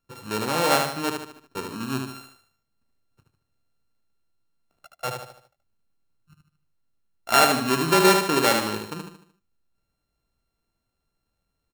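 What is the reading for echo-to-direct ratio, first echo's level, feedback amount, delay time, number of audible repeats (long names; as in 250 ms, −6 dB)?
−4.0 dB, −5.0 dB, 43%, 75 ms, 5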